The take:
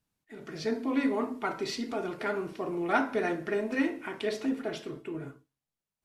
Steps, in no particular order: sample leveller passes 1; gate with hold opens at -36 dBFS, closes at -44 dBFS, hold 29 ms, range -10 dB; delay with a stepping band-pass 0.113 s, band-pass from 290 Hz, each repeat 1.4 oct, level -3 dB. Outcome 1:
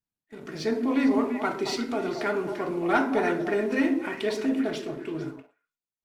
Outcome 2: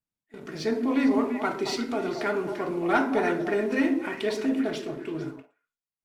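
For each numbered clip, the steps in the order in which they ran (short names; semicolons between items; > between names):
delay with a stepping band-pass > sample leveller > gate with hold; delay with a stepping band-pass > gate with hold > sample leveller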